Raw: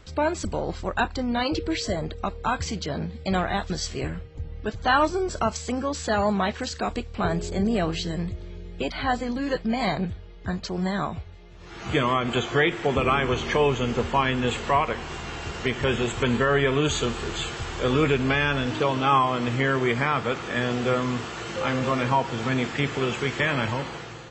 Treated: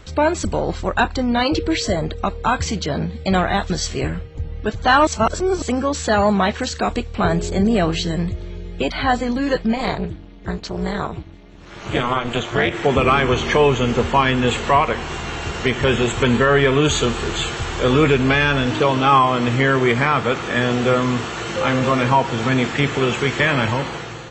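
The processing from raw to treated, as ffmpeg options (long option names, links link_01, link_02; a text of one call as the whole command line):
ffmpeg -i in.wav -filter_complex "[0:a]asplit=3[link_01][link_02][link_03];[link_01]afade=type=out:start_time=9.72:duration=0.02[link_04];[link_02]tremolo=f=240:d=0.974,afade=type=in:start_time=9.72:duration=0.02,afade=type=out:start_time=12.73:duration=0.02[link_05];[link_03]afade=type=in:start_time=12.73:duration=0.02[link_06];[link_04][link_05][link_06]amix=inputs=3:normalize=0,asplit=3[link_07][link_08][link_09];[link_07]atrim=end=5.072[link_10];[link_08]atrim=start=5.068:end=5.622,asetpts=PTS-STARTPTS,areverse[link_11];[link_09]atrim=start=5.618[link_12];[link_10][link_11]acrossfade=duration=0.004:curve1=hsin:curve2=hsin[link_13];[link_13][link_12]acrossfade=duration=0.004:curve1=hsin:curve2=hsin,acontrast=89,bandreject=frequency=4900:width=14" out.wav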